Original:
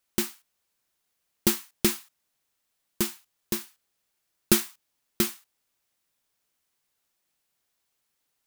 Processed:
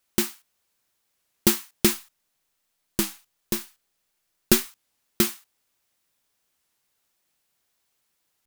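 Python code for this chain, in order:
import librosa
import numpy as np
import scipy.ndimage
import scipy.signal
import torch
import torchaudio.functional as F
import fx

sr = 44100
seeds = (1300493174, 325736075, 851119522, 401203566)

y = fx.halfwave_gain(x, sr, db=-3.0, at=(1.93, 4.67))
y = fx.record_warp(y, sr, rpm=33.33, depth_cents=160.0)
y = F.gain(torch.from_numpy(y), 3.5).numpy()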